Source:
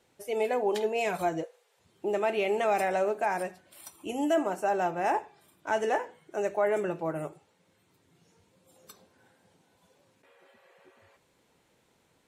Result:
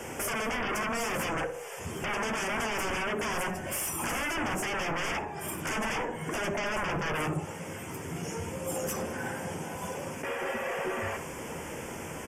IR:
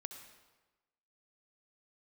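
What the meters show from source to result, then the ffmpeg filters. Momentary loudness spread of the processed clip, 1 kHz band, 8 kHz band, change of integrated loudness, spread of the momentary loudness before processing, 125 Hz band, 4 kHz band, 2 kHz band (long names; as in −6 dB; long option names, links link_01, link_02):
8 LU, −2.0 dB, +12.0 dB, −3.0 dB, 11 LU, +9.5 dB, +8.0 dB, +5.5 dB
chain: -filter_complex "[0:a]asplit=2[link_01][link_02];[link_02]acompressor=threshold=-39dB:ratio=6,volume=2dB[link_03];[link_01][link_03]amix=inputs=2:normalize=0,alimiter=limit=-17.5dB:level=0:latency=1:release=458,acrossover=split=210[link_04][link_05];[link_05]acompressor=threshold=-43dB:ratio=4[link_06];[link_04][link_06]amix=inputs=2:normalize=0,aeval=exprs='0.0376*sin(PI/2*7.94*val(0)/0.0376)':channel_layout=same,asplit=2[link_07][link_08];[link_08]adelay=13,volume=-11dB[link_09];[link_07][link_09]amix=inputs=2:normalize=0,asplit=2[link_10][link_11];[link_11]adelay=62,lowpass=frequency=1200:poles=1,volume=-8dB,asplit=2[link_12][link_13];[link_13]adelay=62,lowpass=frequency=1200:poles=1,volume=0.48,asplit=2[link_14][link_15];[link_15]adelay=62,lowpass=frequency=1200:poles=1,volume=0.48,asplit=2[link_16][link_17];[link_17]adelay=62,lowpass=frequency=1200:poles=1,volume=0.48,asplit=2[link_18][link_19];[link_19]adelay=62,lowpass=frequency=1200:poles=1,volume=0.48,asplit=2[link_20][link_21];[link_21]adelay=62,lowpass=frequency=1200:poles=1,volume=0.48[link_22];[link_10][link_12][link_14][link_16][link_18][link_20][link_22]amix=inputs=7:normalize=0,aresample=32000,aresample=44100,asuperstop=centerf=4000:order=4:qfactor=1.9"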